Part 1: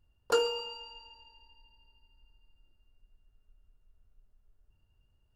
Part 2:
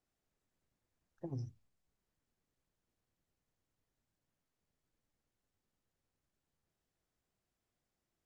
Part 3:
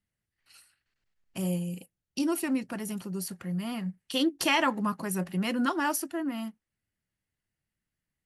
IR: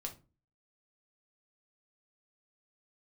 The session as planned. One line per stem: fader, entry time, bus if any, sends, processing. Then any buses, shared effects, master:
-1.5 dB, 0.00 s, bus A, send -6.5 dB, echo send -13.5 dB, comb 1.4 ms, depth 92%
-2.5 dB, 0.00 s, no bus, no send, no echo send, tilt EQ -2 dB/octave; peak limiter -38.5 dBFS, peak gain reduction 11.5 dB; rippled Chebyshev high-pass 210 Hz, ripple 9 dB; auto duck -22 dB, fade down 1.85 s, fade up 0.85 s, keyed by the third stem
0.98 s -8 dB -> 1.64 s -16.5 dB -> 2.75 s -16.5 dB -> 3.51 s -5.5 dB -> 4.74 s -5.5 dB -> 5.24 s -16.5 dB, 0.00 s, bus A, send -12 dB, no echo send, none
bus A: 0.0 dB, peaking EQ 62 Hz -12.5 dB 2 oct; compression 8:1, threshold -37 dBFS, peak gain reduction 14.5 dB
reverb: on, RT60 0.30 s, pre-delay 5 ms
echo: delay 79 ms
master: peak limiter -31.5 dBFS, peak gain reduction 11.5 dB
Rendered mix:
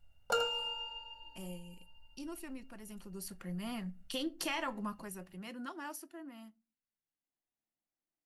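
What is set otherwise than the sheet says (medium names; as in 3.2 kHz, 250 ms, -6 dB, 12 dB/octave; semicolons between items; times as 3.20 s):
stem 2 -2.5 dB -> -8.5 dB; master: missing peak limiter -31.5 dBFS, peak gain reduction 11.5 dB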